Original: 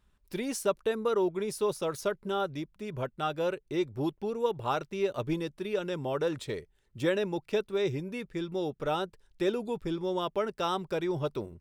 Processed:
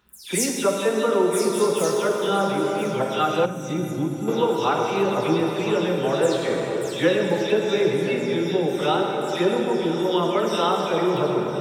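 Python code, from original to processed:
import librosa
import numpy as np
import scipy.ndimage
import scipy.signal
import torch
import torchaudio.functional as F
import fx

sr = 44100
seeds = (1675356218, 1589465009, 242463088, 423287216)

p1 = fx.spec_delay(x, sr, highs='early', ms=186)
p2 = fx.low_shelf(p1, sr, hz=170.0, db=-3.0)
p3 = fx.rev_plate(p2, sr, seeds[0], rt60_s=4.3, hf_ratio=0.55, predelay_ms=0, drr_db=0.0)
p4 = fx.dynamic_eq(p3, sr, hz=7200.0, q=0.76, threshold_db=-56.0, ratio=4.0, max_db=5)
p5 = p4 + fx.echo_single(p4, sr, ms=1015, db=-15.5, dry=0)
p6 = fx.spec_box(p5, sr, start_s=3.45, length_s=0.83, low_hz=320.0, high_hz=5700.0, gain_db=-13)
p7 = scipy.signal.sosfilt(scipy.signal.butter(2, 100.0, 'highpass', fs=sr, output='sos'), p6)
p8 = fx.rider(p7, sr, range_db=10, speed_s=0.5)
p9 = p7 + F.gain(torch.from_numpy(p8), -0.5).numpy()
y = F.gain(torch.from_numpy(p9), 2.0).numpy()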